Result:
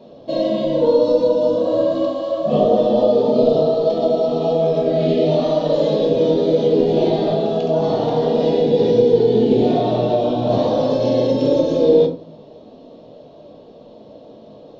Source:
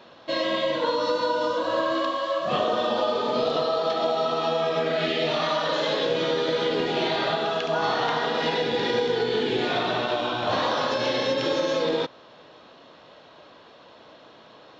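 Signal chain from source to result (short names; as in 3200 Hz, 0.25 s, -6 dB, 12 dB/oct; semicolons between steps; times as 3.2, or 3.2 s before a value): EQ curve 580 Hz 0 dB, 1500 Hz -25 dB, 3900 Hz -13 dB; reverb RT60 0.40 s, pre-delay 4 ms, DRR 1 dB; gain +7.5 dB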